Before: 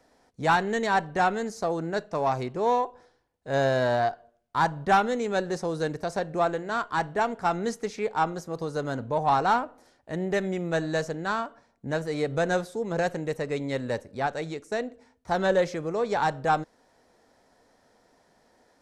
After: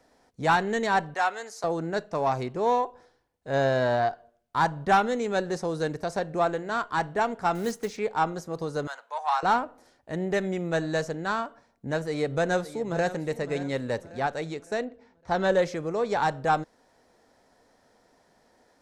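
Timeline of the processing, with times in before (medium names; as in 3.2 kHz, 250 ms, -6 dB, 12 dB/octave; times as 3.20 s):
1.14–1.64 s: high-pass 720 Hz
3.50–4.11 s: treble shelf 8.1 kHz -8.5 dB
7.55–7.99 s: block-companded coder 5-bit
8.87–9.43 s: high-pass 840 Hz 24 dB/octave
12.08–13.07 s: echo throw 560 ms, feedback 40%, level -14 dB
14.84–15.45 s: low-pass 3.3 kHz -> 7.1 kHz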